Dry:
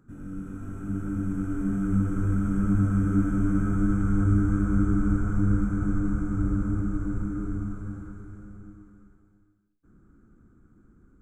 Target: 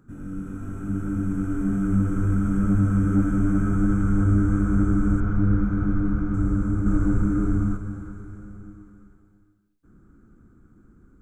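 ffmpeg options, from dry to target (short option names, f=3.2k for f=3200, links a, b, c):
-filter_complex "[0:a]asettb=1/sr,asplit=3[a][b][c];[a]atrim=end=5.204[d];[b]atrim=start=5.2:end=6.34,asetpts=PTS-STARTPTS,afade=t=in:d=0.004:c=qsin,afade=t=out:st=1.136:d=0.004:c=qsin,lowpass=f=4.9k:w=0.5412,lowpass=f=4.9k:w=1.3066[e];[c]atrim=start=6.336[f];[d][e]acrossfade=d=0.004:c1=hsin:c2=qsin[g];[g][f]acrossfade=d=0.004:c1=qsin:c2=hsin,asettb=1/sr,asplit=3[h][i][j];[h]atrim=end=6.864[k];[i]atrim=start=6.86:end=7.77,asetpts=PTS-STARTPTS,afade=t=in:d=0.004:c=qsin,afade=t=out:st=0.906:d=0.004:c=qsin,acontrast=37[l];[j]atrim=start=7.766[m];[k][l]acrossfade=d=0.004:c1=hsin:c2=qsin[n];[n][m]acrossfade=d=0.004:c1=qsin:c2=hsin,asoftclip=type=tanh:threshold=-12.5dB,volume=3.5dB"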